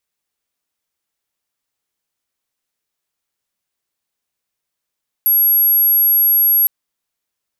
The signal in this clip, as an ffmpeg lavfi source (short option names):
-f lavfi -i "sine=f=11500:d=1.41:r=44100,volume=8.56dB"